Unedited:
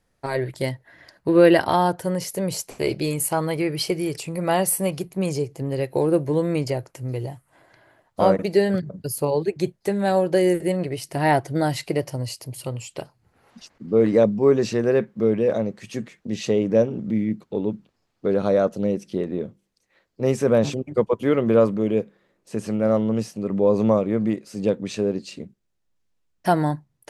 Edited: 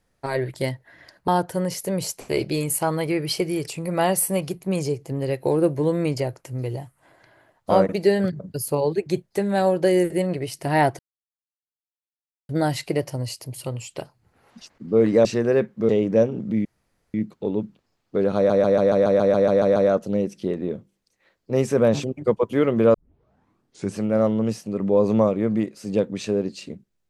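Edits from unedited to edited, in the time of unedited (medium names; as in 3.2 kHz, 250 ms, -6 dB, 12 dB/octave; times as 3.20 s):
1.28–1.78 s: delete
11.49 s: insert silence 1.50 s
14.25–14.64 s: delete
15.28–16.48 s: delete
17.24 s: insert room tone 0.49 s
18.46 s: stutter 0.14 s, 11 plays
21.64 s: tape start 1.02 s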